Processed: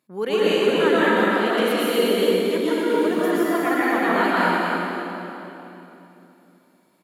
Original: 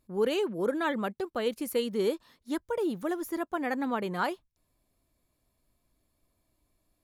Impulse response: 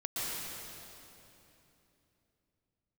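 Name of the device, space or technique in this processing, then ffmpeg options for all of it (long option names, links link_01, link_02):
stadium PA: -filter_complex "[0:a]highpass=frequency=150:width=0.5412,highpass=frequency=150:width=1.3066,equalizer=frequency=2000:width_type=o:width=2.1:gain=6.5,aecho=1:1:201.2|259.5:0.282|0.355[link_01];[1:a]atrim=start_sample=2205[link_02];[link_01][link_02]afir=irnorm=-1:irlink=0,volume=3dB"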